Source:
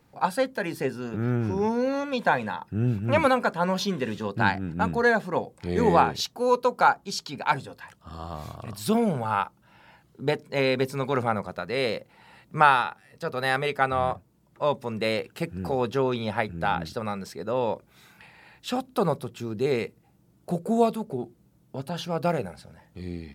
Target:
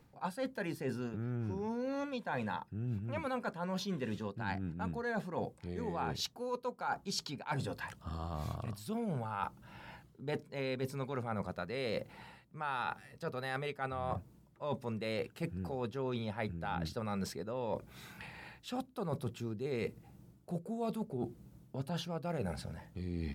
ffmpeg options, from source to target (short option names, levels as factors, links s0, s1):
-af "lowshelf=f=200:g=6.5,areverse,acompressor=threshold=0.0178:ratio=16,areverse,volume=1.12"